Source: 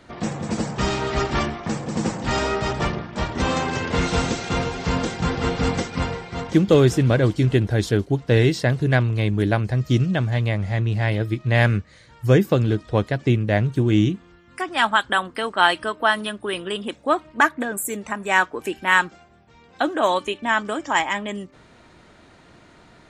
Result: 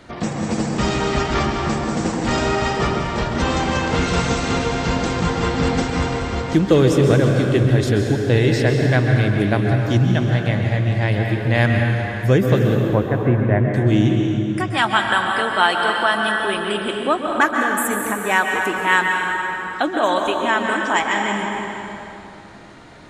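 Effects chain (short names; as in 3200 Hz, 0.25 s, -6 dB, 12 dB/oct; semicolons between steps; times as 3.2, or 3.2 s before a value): 12.75–13.74 LPF 2000 Hz 24 dB/oct; plate-style reverb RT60 2.8 s, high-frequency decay 0.7×, pre-delay 0.115 s, DRR 1.5 dB; in parallel at +0.5 dB: compressor, threshold -27 dBFS, peak gain reduction 16.5 dB; on the sum: gain -1.5 dB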